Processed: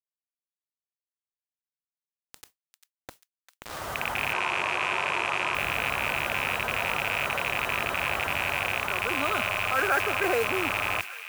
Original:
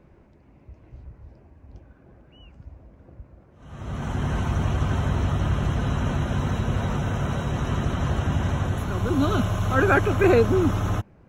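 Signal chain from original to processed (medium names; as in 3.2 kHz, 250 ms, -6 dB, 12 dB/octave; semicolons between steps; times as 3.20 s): rattle on loud lows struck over -25 dBFS, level -15 dBFS; three-band isolator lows -22 dB, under 500 Hz, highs -22 dB, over 3.7 kHz; bit crusher 8-bit; modulation noise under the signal 16 dB; 4.33–5.55 s: cabinet simulation 160–8800 Hz, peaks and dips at 240 Hz -6 dB, 360 Hz +7 dB, 1 kHz +6 dB; feedback echo behind a high-pass 397 ms, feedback 52%, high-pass 1.5 kHz, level -24 dB; level flattener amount 50%; trim -4 dB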